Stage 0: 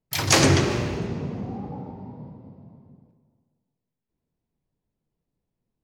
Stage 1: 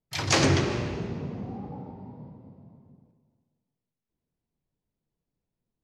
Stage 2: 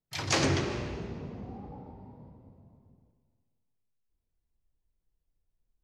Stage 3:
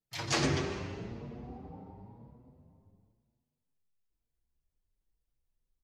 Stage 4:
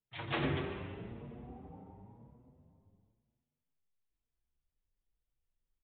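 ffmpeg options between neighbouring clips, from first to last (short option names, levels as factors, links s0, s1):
-af "lowpass=6500,volume=0.631"
-af "asubboost=boost=11:cutoff=54,volume=0.596"
-filter_complex "[0:a]asplit=2[s0][s1];[s1]adelay=7,afreqshift=0.99[s2];[s0][s2]amix=inputs=2:normalize=1"
-af "aresample=8000,aresample=44100,volume=0.631"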